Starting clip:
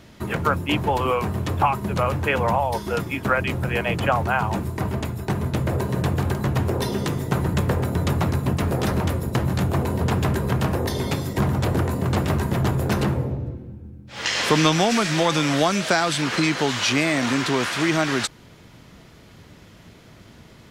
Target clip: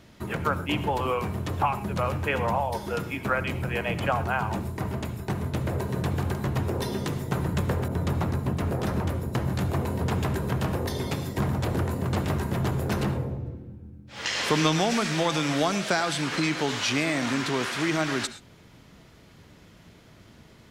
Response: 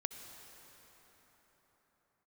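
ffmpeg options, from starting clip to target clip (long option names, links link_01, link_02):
-filter_complex "[1:a]atrim=start_sample=2205,afade=type=out:start_time=0.18:duration=0.01,atrim=end_sample=8379[link_01];[0:a][link_01]afir=irnorm=-1:irlink=0,asettb=1/sr,asplit=3[link_02][link_03][link_04];[link_02]atrim=end=7.884[link_05];[link_03]atrim=start=7.88:end=9.53,asetpts=PTS-STARTPTS,afade=type=in:duration=0.004:curve=qsin,afade=type=out:start_time=1.646:duration=0.004:curve=qsin,adynamicequalizer=threshold=0.00891:dfrequency=1900:dqfactor=0.7:tfrequency=1900:tqfactor=0.7:attack=5:release=100:ratio=0.375:range=2:mode=cutabove:tftype=highshelf[link_06];[link_04]atrim=start=9.526[link_07];[link_05][link_06]acrossfade=duration=0.004:curve1=hsin:curve2=qsin[link_08];[link_08][link_07]acrossfade=duration=0.004:curve1=qsin:curve2=hsin,volume=-3.5dB"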